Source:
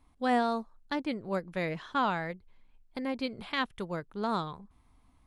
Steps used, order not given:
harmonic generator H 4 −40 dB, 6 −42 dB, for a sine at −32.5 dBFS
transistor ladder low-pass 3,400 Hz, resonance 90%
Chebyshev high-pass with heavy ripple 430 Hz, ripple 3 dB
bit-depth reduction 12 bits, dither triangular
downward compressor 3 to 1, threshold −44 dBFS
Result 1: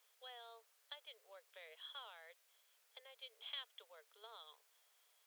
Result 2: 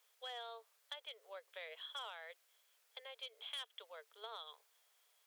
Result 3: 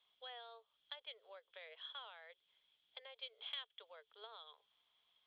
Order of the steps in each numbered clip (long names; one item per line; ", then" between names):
downward compressor, then transistor ladder low-pass, then bit-depth reduction, then harmonic generator, then Chebyshev high-pass with heavy ripple
transistor ladder low-pass, then bit-depth reduction, then harmonic generator, then downward compressor, then Chebyshev high-pass with heavy ripple
Chebyshev high-pass with heavy ripple, then bit-depth reduction, then downward compressor, then transistor ladder low-pass, then harmonic generator